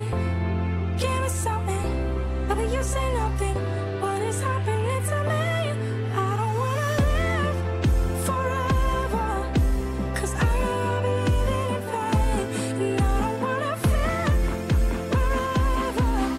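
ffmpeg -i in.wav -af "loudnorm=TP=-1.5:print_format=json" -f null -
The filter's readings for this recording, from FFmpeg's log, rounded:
"input_i" : "-25.0",
"input_tp" : "-12.9",
"input_lra" : "1.6",
"input_thresh" : "-35.0",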